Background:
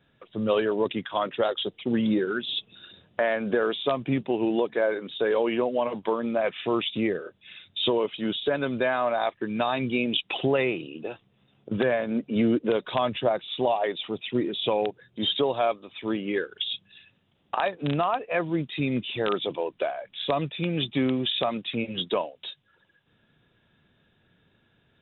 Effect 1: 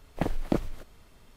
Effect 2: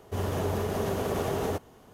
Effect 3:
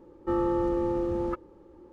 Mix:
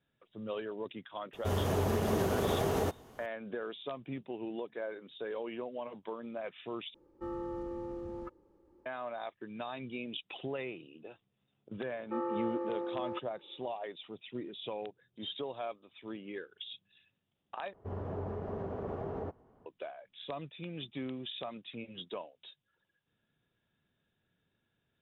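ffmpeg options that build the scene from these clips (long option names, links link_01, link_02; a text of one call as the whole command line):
ffmpeg -i bed.wav -i cue0.wav -i cue1.wav -i cue2.wav -filter_complex "[2:a]asplit=2[link_01][link_02];[3:a]asplit=2[link_03][link_04];[0:a]volume=-15dB[link_05];[link_04]highpass=450,lowpass=2300[link_06];[link_02]lowpass=1200[link_07];[link_05]asplit=3[link_08][link_09][link_10];[link_08]atrim=end=6.944[link_11];[link_03]atrim=end=1.92,asetpts=PTS-STARTPTS,volume=-13dB[link_12];[link_09]atrim=start=8.856:end=17.734[link_13];[link_07]atrim=end=1.93,asetpts=PTS-STARTPTS,volume=-9dB[link_14];[link_10]atrim=start=19.656[link_15];[link_01]atrim=end=1.93,asetpts=PTS-STARTPTS,volume=-1.5dB,afade=type=in:duration=0.004:curve=hsin,afade=type=out:start_time=1.926:duration=0.004:curve=hsin,adelay=1330[link_16];[link_06]atrim=end=1.92,asetpts=PTS-STARTPTS,volume=-5dB,afade=type=in:duration=0.004:curve=hsin,afade=type=out:start_time=1.916:duration=0.004:curve=hsin,adelay=11840[link_17];[link_11][link_12]acrossfade=duration=0.004:curve1=hsin:curve2=hsin[link_18];[link_18][link_13]acrossfade=duration=0.004:curve1=hsin:curve2=hsin[link_19];[link_19][link_14]acrossfade=duration=0.004:curve1=hsin:curve2=hsin[link_20];[link_20][link_15]acrossfade=duration=0.004:curve1=hsin:curve2=hsin[link_21];[link_21][link_16][link_17]amix=inputs=3:normalize=0" out.wav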